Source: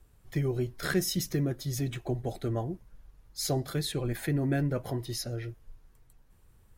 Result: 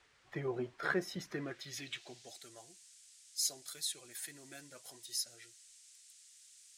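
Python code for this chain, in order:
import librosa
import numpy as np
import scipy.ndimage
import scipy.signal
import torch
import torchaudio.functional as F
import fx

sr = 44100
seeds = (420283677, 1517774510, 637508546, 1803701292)

y = fx.spec_quant(x, sr, step_db=15)
y = fx.dmg_noise_band(y, sr, seeds[0], low_hz=1500.0, high_hz=9300.0, level_db=-61.0)
y = fx.filter_sweep_bandpass(y, sr, from_hz=940.0, to_hz=8000.0, start_s=1.17, end_s=2.49, q=1.2)
y = y * 10.0 ** (3.5 / 20.0)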